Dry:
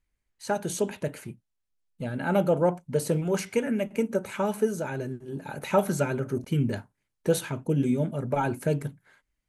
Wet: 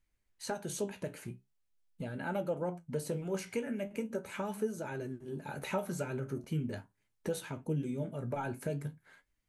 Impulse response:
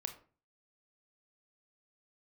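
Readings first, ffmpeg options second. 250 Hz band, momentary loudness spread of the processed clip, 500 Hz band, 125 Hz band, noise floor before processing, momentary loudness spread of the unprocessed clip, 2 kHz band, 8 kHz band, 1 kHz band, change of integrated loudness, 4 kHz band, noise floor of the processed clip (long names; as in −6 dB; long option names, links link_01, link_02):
−10.0 dB, 7 LU, −10.5 dB, −9.5 dB, −81 dBFS, 11 LU, −8.0 dB, −8.5 dB, −10.5 dB, −10.0 dB, −8.0 dB, −79 dBFS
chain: -af "acompressor=threshold=-40dB:ratio=2,flanger=delay=8.5:depth=8.8:regen=58:speed=0.42:shape=triangular,volume=3.5dB"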